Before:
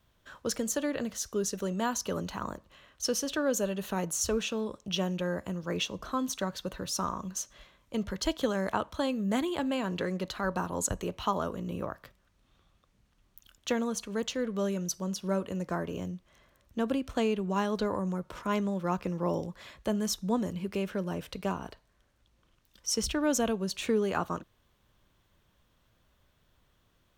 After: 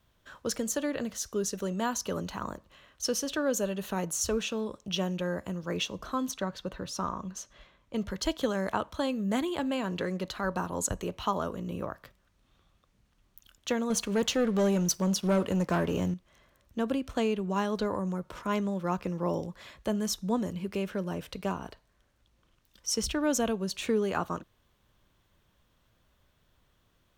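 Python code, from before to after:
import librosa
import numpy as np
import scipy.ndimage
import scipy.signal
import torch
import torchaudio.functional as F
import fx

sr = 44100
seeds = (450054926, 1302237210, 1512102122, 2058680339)

y = fx.high_shelf(x, sr, hz=6300.0, db=-12.0, at=(6.31, 7.96))
y = fx.leveller(y, sr, passes=2, at=(13.9, 16.14))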